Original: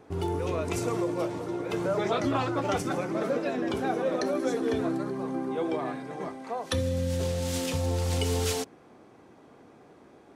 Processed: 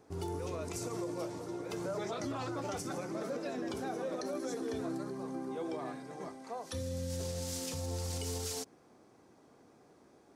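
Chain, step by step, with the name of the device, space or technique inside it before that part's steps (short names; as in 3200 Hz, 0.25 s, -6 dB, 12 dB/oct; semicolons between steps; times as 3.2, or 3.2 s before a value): over-bright horn tweeter (resonant high shelf 4000 Hz +6 dB, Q 1.5; limiter -21 dBFS, peak gain reduction 9 dB); gain -8 dB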